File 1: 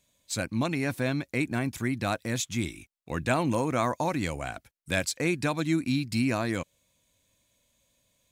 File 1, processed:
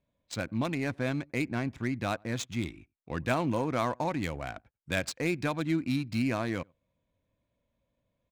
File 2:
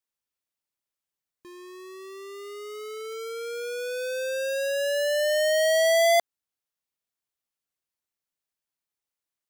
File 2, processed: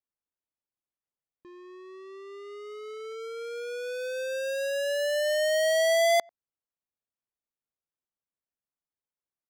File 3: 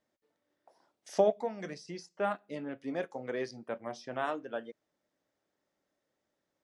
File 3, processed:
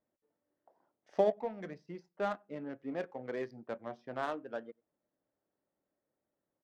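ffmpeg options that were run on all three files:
-filter_complex "[0:a]asplit=2[s0][s1];[s1]adelay=93.29,volume=0.0355,highshelf=f=4000:g=-2.1[s2];[s0][s2]amix=inputs=2:normalize=0,adynamicsmooth=sensitivity=6.5:basefreq=1500,volume=0.75"

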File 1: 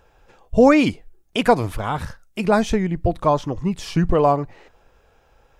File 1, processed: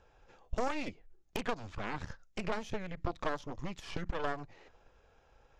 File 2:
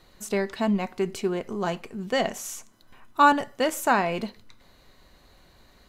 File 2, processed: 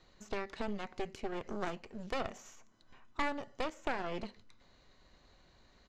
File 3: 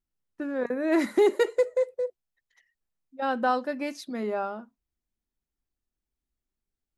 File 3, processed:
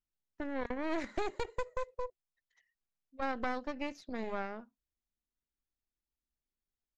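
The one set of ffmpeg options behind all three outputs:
-filter_complex "[0:a]acrossover=split=850|2600[s0][s1][s2];[s0]acompressor=threshold=0.0282:ratio=4[s3];[s1]acompressor=threshold=0.0112:ratio=4[s4];[s2]acompressor=threshold=0.00398:ratio=4[s5];[s3][s4][s5]amix=inputs=3:normalize=0,aresample=16000,aresample=44100,aeval=exprs='0.178*(cos(1*acos(clip(val(0)/0.178,-1,1)))-cos(1*PI/2))+0.0708*(cos(6*acos(clip(val(0)/0.178,-1,1)))-cos(6*PI/2))+0.0126*(cos(8*acos(clip(val(0)/0.178,-1,1)))-cos(8*PI/2))':c=same,volume=0.398"

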